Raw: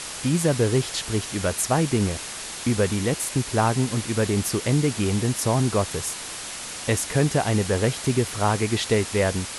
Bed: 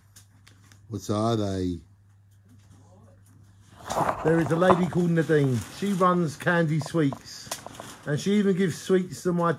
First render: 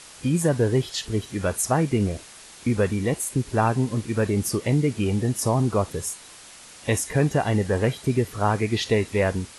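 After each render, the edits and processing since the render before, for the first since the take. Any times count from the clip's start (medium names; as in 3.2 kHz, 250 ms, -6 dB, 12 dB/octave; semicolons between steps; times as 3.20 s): noise print and reduce 11 dB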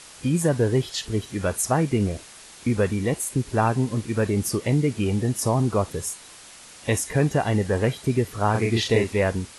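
8.51–9.13 s: doubling 35 ms -3 dB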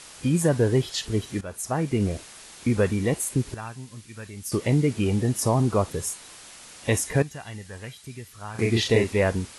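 1.41–2.13 s: fade in, from -15 dB; 3.54–4.52 s: amplifier tone stack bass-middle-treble 5-5-5; 7.22–8.59 s: amplifier tone stack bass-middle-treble 5-5-5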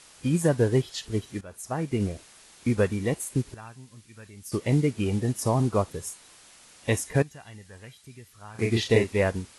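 upward expansion 1.5:1, over -31 dBFS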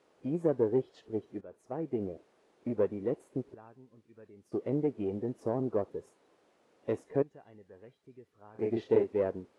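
single-diode clipper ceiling -22.5 dBFS; band-pass filter 420 Hz, Q 1.7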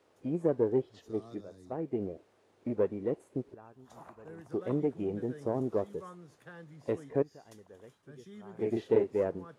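add bed -27 dB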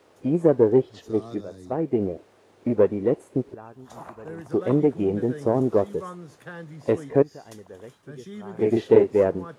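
trim +10.5 dB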